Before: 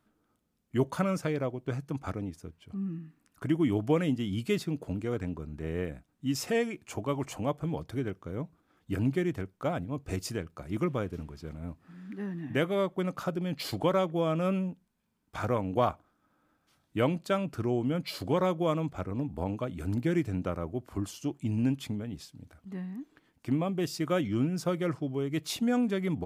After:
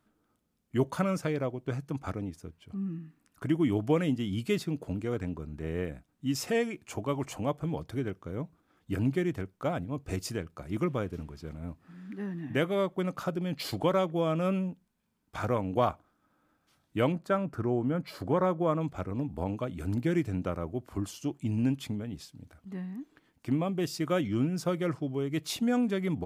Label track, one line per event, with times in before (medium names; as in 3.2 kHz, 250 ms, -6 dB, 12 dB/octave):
17.120000	18.810000	resonant high shelf 2.1 kHz -7.5 dB, Q 1.5